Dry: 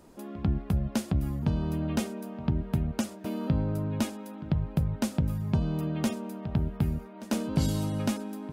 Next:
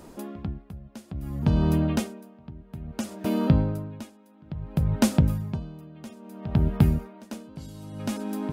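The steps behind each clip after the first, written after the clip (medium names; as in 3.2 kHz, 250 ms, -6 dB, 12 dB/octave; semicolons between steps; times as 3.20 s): logarithmic tremolo 0.59 Hz, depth 23 dB; trim +8.5 dB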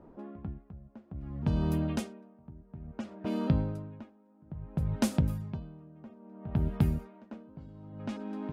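level-controlled noise filter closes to 990 Hz, open at -19 dBFS; trim -7 dB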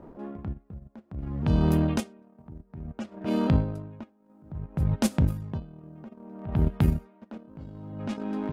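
transient shaper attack -8 dB, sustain -12 dB; trim +8.5 dB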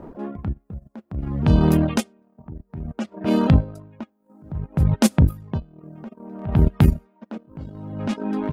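reverb removal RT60 0.74 s; trim +8 dB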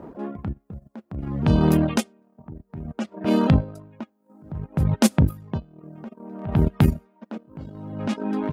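high-pass 100 Hz 6 dB/octave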